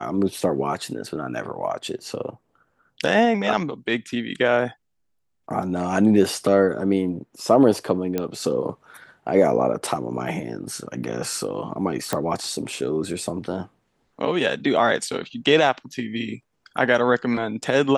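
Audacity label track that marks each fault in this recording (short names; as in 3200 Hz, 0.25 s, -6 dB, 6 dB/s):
8.180000	8.180000	pop -11 dBFS
12.130000	12.130000	pop -9 dBFS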